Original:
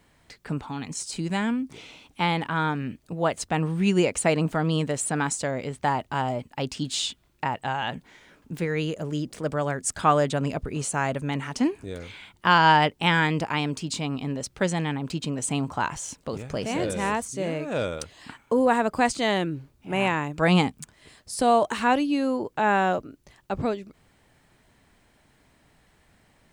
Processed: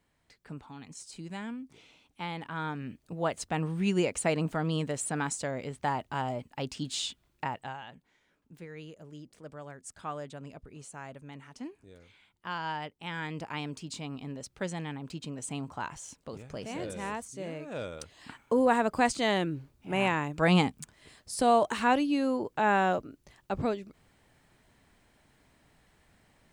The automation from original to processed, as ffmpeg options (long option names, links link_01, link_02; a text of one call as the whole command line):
ffmpeg -i in.wav -af "volume=8.5dB,afade=type=in:start_time=2.31:duration=0.86:silence=0.446684,afade=type=out:start_time=7.44:duration=0.42:silence=0.251189,afade=type=in:start_time=13.05:duration=0.52:silence=0.398107,afade=type=in:start_time=17.92:duration=0.47:silence=0.473151" out.wav